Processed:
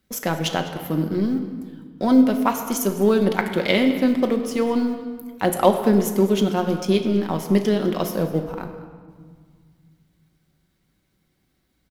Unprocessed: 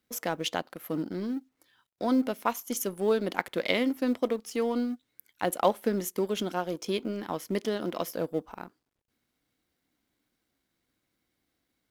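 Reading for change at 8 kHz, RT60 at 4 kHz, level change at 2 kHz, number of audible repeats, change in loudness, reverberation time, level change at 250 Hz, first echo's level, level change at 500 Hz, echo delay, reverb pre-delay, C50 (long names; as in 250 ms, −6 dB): +6.5 dB, 1.1 s, +7.0 dB, 1, +9.5 dB, 1.8 s, +11.5 dB, −17.5 dB, +8.5 dB, 203 ms, 5 ms, 8.0 dB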